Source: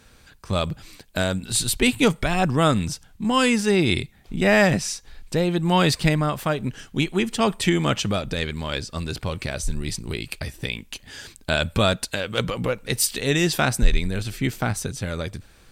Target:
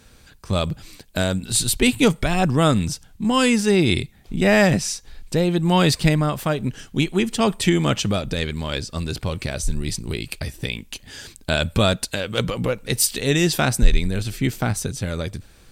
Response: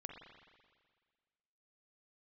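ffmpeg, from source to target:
-af "equalizer=f=1400:w=0.5:g=-3.5,volume=1.41"

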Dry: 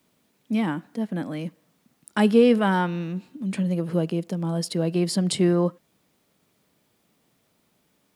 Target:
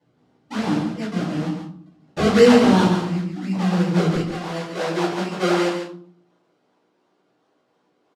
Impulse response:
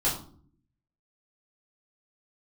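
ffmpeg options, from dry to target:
-filter_complex "[0:a]acrossover=split=4500[s0][s1];[s1]acompressor=threshold=0.00251:ratio=4:attack=1:release=60[s2];[s0][s2]amix=inputs=2:normalize=0,acrusher=samples=34:mix=1:aa=0.000001:lfo=1:lforange=34:lforate=2.8,asetnsamples=n=441:p=0,asendcmd='4.15 highpass f 340',highpass=110,lowpass=6200,aecho=1:1:141:0.447[s3];[1:a]atrim=start_sample=2205[s4];[s3][s4]afir=irnorm=-1:irlink=0,volume=0.422"

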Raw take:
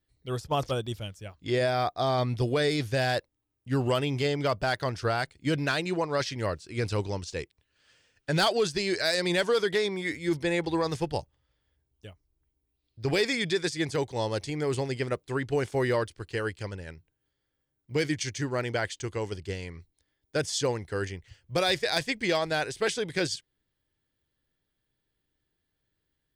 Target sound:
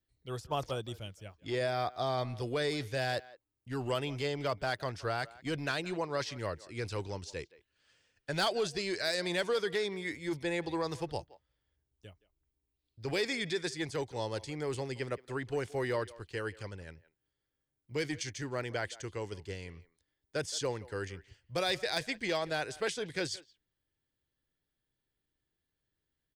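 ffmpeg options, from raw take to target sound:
-filter_complex "[0:a]acrossover=split=350|2300[s0][s1][s2];[s0]asoftclip=type=tanh:threshold=0.0316[s3];[s3][s1][s2]amix=inputs=3:normalize=0,asplit=2[s4][s5];[s5]adelay=170,highpass=300,lowpass=3400,asoftclip=type=hard:threshold=0.1,volume=0.112[s6];[s4][s6]amix=inputs=2:normalize=0,volume=0.501"

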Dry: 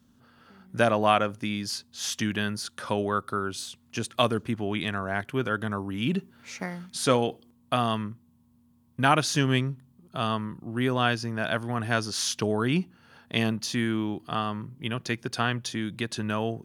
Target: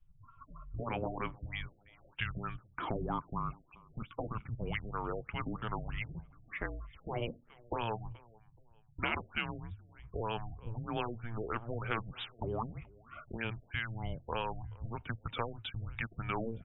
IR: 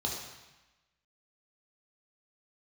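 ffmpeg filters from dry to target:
-filter_complex "[0:a]afftfilt=real='re*lt(hypot(re,im),0.316)':imag='im*lt(hypot(re,im),0.316)':win_size=1024:overlap=0.75,afftdn=nr=30:nf=-49,equalizer=f=100:t=o:w=0.67:g=-4,equalizer=f=250:t=o:w=0.67:g=-7,equalizer=f=2500:t=o:w=0.67:g=5,acompressor=threshold=0.00178:ratio=2,afreqshift=-230,aeval=exprs='0.0473*(cos(1*acos(clip(val(0)/0.0473,-1,1)))-cos(1*PI/2))+0.00133*(cos(4*acos(clip(val(0)/0.0473,-1,1)))-cos(4*PI/2))+0.000944*(cos(5*acos(clip(val(0)/0.0473,-1,1)))-cos(5*PI/2))':c=same,asplit=2[s0][s1];[s1]adelay=428,lowpass=f=3000:p=1,volume=0.0631,asplit=2[s2][s3];[s3]adelay=428,lowpass=f=3000:p=1,volume=0.34[s4];[s2][s4]amix=inputs=2:normalize=0[s5];[s0][s5]amix=inputs=2:normalize=0,afftfilt=real='re*lt(b*sr/1024,700*pow(3900/700,0.5+0.5*sin(2*PI*3.2*pts/sr)))':imag='im*lt(b*sr/1024,700*pow(3900/700,0.5+0.5*sin(2*PI*3.2*pts/sr)))':win_size=1024:overlap=0.75,volume=2.99"

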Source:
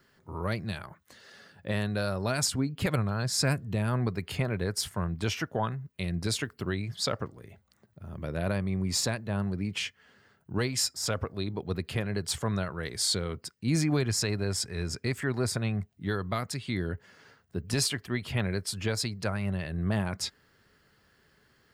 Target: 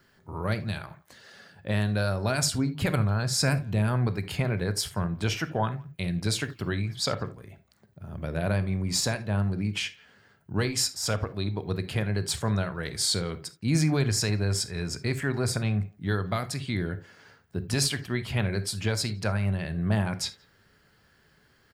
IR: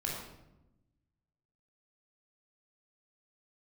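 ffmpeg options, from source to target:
-filter_complex "[0:a]asplit=2[s0][s1];[s1]adelay=170,highpass=300,lowpass=3400,asoftclip=type=hard:threshold=0.0531,volume=0.0562[s2];[s0][s2]amix=inputs=2:normalize=0,asplit=2[s3][s4];[1:a]atrim=start_sample=2205,atrim=end_sample=3969[s5];[s4][s5]afir=irnorm=-1:irlink=0,volume=0.316[s6];[s3][s6]amix=inputs=2:normalize=0"

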